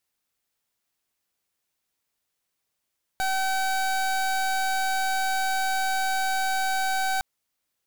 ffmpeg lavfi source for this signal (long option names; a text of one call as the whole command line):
ffmpeg -f lavfi -i "aevalsrc='0.0562*(2*lt(mod(765*t,1),0.27)-1)':duration=4.01:sample_rate=44100" out.wav